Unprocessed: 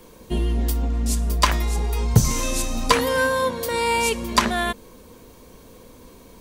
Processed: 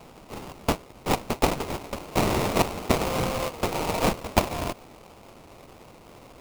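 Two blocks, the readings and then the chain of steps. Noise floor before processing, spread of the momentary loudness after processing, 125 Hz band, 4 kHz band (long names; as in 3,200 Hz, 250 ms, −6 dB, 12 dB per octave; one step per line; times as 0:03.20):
−47 dBFS, 10 LU, −8.0 dB, −6.5 dB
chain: high-pass filter sweep 1,900 Hz → 540 Hz, 0:01.84–0:02.58
first difference
sample-rate reduction 1,700 Hz, jitter 20%
level +5.5 dB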